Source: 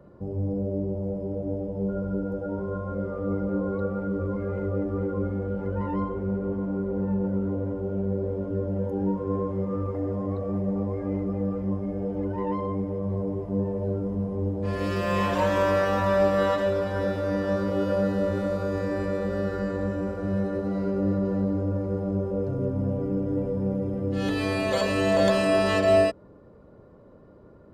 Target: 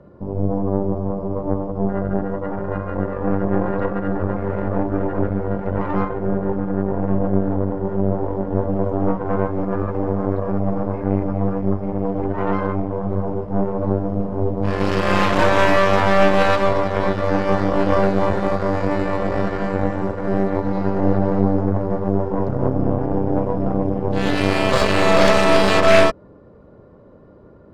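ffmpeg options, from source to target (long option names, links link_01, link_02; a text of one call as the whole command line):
ffmpeg -i in.wav -af "aeval=exprs='0.376*(cos(1*acos(clip(val(0)/0.376,-1,1)))-cos(1*PI/2))+0.106*(cos(4*acos(clip(val(0)/0.376,-1,1)))-cos(4*PI/2))+0.168*(cos(6*acos(clip(val(0)/0.376,-1,1)))-cos(6*PI/2))':channel_layout=same,adynamicsmooth=sensitivity=6:basefreq=6300,volume=5dB" out.wav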